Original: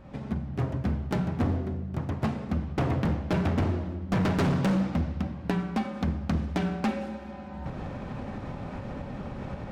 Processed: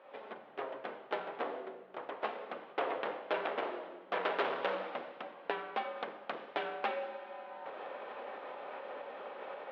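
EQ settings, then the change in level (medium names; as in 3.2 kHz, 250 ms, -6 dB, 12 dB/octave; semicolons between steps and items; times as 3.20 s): elliptic band-pass 450–3400 Hz, stop band 80 dB; -1.0 dB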